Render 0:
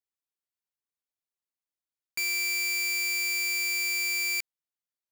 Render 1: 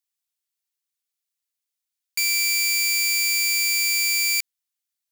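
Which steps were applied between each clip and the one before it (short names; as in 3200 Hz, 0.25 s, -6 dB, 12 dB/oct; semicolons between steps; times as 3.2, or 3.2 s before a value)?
tilt shelf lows -10 dB, about 1300 Hz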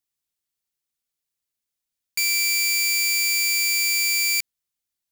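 low shelf 340 Hz +11.5 dB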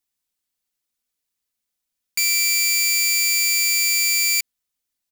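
comb 4 ms, depth 41%; gain +2.5 dB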